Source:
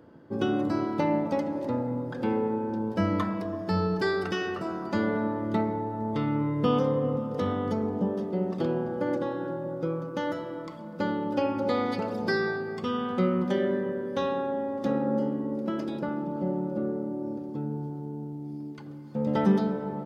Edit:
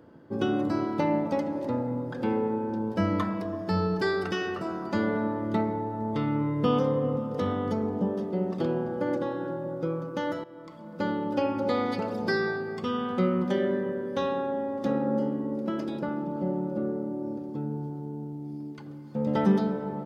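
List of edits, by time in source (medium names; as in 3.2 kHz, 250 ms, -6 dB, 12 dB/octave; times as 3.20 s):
10.44–11.07 s: fade in, from -14 dB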